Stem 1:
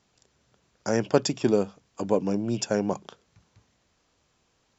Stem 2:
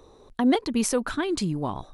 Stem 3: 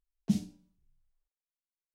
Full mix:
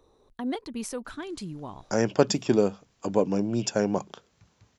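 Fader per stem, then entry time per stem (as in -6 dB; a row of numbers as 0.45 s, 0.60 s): +0.5 dB, -10.0 dB, -14.0 dB; 1.05 s, 0.00 s, 2.00 s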